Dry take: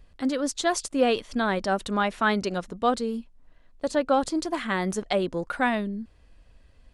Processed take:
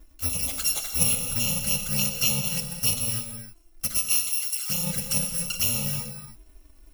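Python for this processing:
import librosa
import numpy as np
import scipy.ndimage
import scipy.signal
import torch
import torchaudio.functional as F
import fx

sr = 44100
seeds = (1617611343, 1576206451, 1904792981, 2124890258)

y = fx.bit_reversed(x, sr, seeds[0], block=128)
y = fx.highpass(y, sr, hz=1200.0, slope=12, at=(3.97, 4.7))
y = fx.env_flanger(y, sr, rest_ms=3.8, full_db=-22.5)
y = fx.rev_gated(y, sr, seeds[1], gate_ms=340, shape='flat', drr_db=4.5)
y = F.gain(torch.from_numpy(y), 2.5).numpy()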